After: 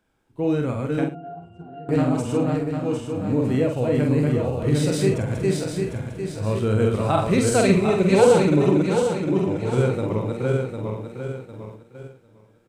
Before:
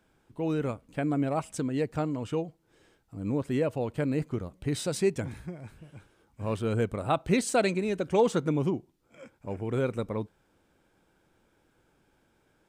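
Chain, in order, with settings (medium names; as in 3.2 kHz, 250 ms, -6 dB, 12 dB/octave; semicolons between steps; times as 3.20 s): backward echo that repeats 376 ms, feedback 62%, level -2 dB; gate -46 dBFS, range -8 dB; harmonic-percussive split harmonic +7 dB; 1.04–1.89 s: pitch-class resonator F, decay 0.23 s; multi-tap echo 47/107 ms -4.5/-16 dB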